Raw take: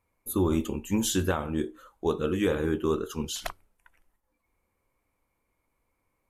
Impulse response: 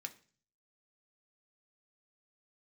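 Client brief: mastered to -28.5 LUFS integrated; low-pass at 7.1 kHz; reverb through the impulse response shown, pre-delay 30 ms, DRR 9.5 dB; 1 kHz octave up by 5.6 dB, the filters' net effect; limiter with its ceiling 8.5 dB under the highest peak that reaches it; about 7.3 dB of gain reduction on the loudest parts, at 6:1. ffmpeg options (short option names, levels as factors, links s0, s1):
-filter_complex "[0:a]lowpass=7100,equalizer=f=1000:t=o:g=7,acompressor=threshold=0.0398:ratio=6,alimiter=level_in=1.06:limit=0.0631:level=0:latency=1,volume=0.944,asplit=2[s0][s1];[1:a]atrim=start_sample=2205,adelay=30[s2];[s1][s2]afir=irnorm=-1:irlink=0,volume=0.473[s3];[s0][s3]amix=inputs=2:normalize=0,volume=2.24"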